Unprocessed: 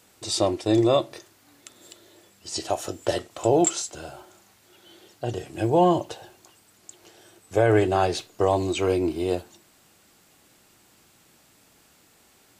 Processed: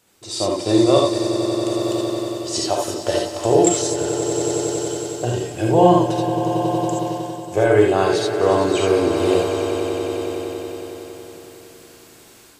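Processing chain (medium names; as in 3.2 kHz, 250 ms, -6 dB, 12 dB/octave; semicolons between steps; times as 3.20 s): echo with a slow build-up 92 ms, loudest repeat 5, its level -14 dB; level rider gain up to 11 dB; gated-style reverb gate 100 ms rising, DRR 0.5 dB; trim -4.5 dB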